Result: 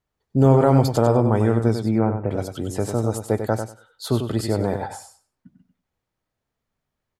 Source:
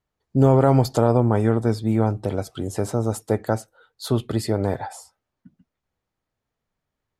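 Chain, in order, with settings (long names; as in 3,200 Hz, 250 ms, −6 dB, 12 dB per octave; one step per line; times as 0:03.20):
0:01.86–0:02.31: Butterworth low-pass 2,500 Hz 72 dB per octave
on a send: repeating echo 96 ms, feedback 17%, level −7.5 dB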